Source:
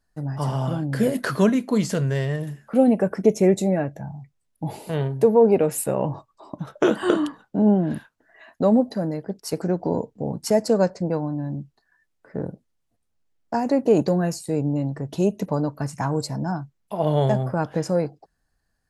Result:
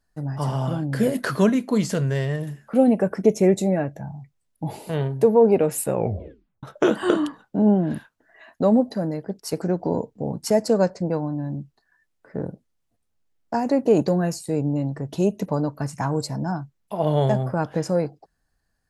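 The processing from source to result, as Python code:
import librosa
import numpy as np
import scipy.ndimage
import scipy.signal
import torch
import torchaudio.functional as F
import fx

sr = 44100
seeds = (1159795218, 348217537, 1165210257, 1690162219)

y = fx.edit(x, sr, fx.tape_stop(start_s=5.92, length_s=0.71), tone=tone)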